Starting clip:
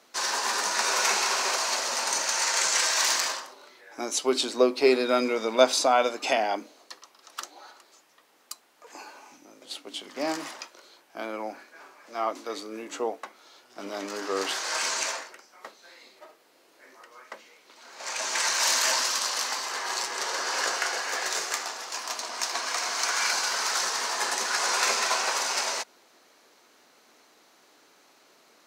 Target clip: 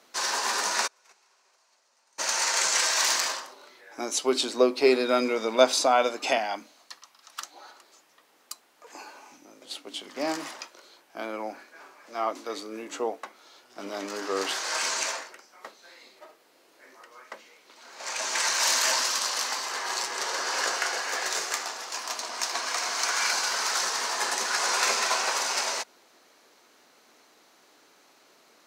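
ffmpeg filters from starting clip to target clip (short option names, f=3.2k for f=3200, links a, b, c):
-filter_complex "[0:a]asplit=3[a][b][c];[a]afade=t=out:st=0.86:d=0.02[d];[b]agate=range=-39dB:threshold=-18dB:ratio=16:detection=peak,afade=t=in:st=0.86:d=0.02,afade=t=out:st=2.18:d=0.02[e];[c]afade=t=in:st=2.18:d=0.02[f];[d][e][f]amix=inputs=3:normalize=0,asettb=1/sr,asplit=3[g][h][i];[g]atrim=end=6.384[j];[h]atrim=start=6.38:end=7.54,asetpts=PTS-STARTPTS,afade=t=in:d=0.004:c=qsin,afade=t=out:st=1.156:d=0.004:c=qsin,equalizer=f=410:t=o:w=1.2:g=-11[k];[i]atrim=start=7.536[l];[j][k]acrossfade=d=0.004:c1=hsin:c2=qsin[m];[m][l]acrossfade=d=0.004:c1=qsin:c2=hsin"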